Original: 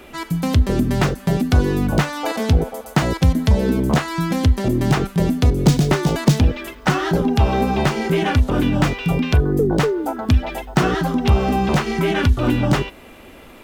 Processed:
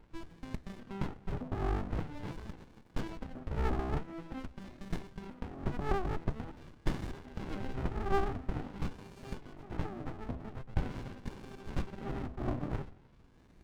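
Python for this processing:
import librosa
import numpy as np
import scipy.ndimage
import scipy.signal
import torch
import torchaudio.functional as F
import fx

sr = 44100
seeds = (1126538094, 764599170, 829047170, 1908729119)

p1 = x + fx.echo_single(x, sr, ms=133, db=-21.5, dry=0)
p2 = fx.wah_lfo(p1, sr, hz=0.46, low_hz=410.0, high_hz=2000.0, q=11.0)
p3 = fx.running_max(p2, sr, window=65)
y = p3 * librosa.db_to_amplitude(3.5)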